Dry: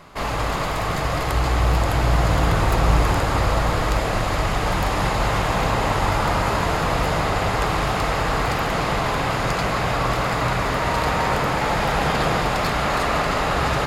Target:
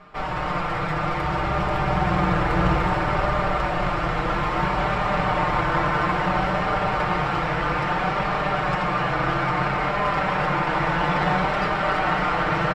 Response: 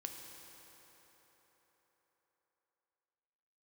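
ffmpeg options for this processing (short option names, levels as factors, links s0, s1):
-filter_complex "[0:a]lowpass=1900,aemphasis=mode=production:type=50kf,aecho=1:1:7.2:0.49,aeval=exprs='0.501*(cos(1*acos(clip(val(0)/0.501,-1,1)))-cos(1*PI/2))+0.0562*(cos(3*acos(clip(val(0)/0.501,-1,1)))-cos(3*PI/2))':c=same,flanger=delay=5.3:depth=1.4:regen=41:speed=0.55:shape=triangular,asplit=2[s0][s1];[s1]adelay=290,highpass=300,lowpass=3400,asoftclip=type=hard:threshold=0.106,volume=0.501[s2];[s0][s2]amix=inputs=2:normalize=0,asplit=2[s3][s4];[1:a]atrim=start_sample=2205,lowshelf=f=370:g=-7.5[s5];[s4][s5]afir=irnorm=-1:irlink=0,volume=1.19[s6];[s3][s6]amix=inputs=2:normalize=0,asetrate=48000,aresample=44100"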